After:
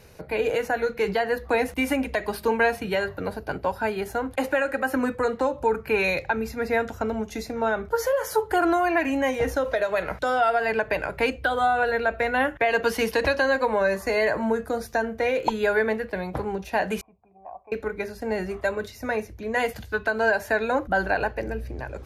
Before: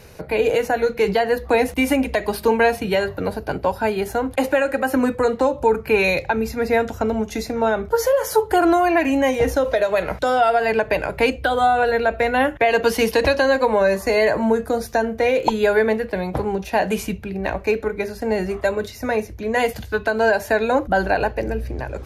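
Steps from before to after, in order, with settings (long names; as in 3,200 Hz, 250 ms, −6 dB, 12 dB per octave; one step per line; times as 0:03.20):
0:17.01–0:17.72: formant resonators in series a
dynamic equaliser 1,500 Hz, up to +5 dB, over −35 dBFS, Q 1.3
level −6.5 dB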